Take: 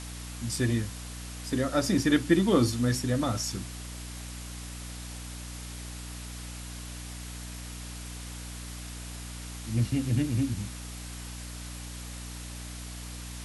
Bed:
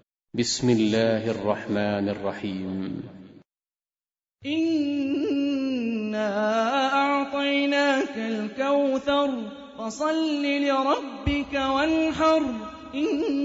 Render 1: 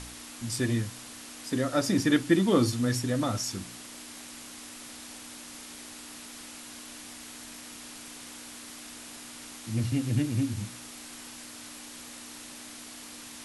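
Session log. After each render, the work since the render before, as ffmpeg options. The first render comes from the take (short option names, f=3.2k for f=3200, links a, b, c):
-af "bandreject=f=60:t=h:w=4,bandreject=f=120:t=h:w=4,bandreject=f=180:t=h:w=4"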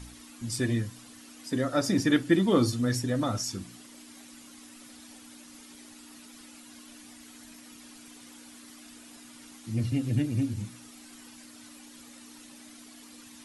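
-af "afftdn=nr=10:nf=-45"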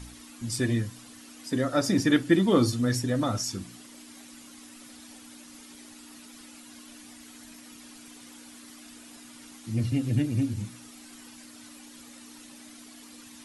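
-af "volume=1.5dB"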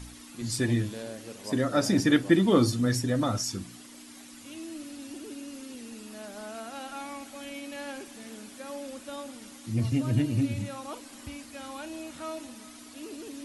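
-filter_complex "[1:a]volume=-17.5dB[a];[0:a][a]amix=inputs=2:normalize=0"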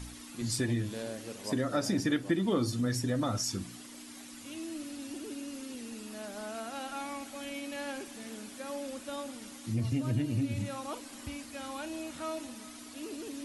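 -af "acompressor=threshold=-29dB:ratio=2.5"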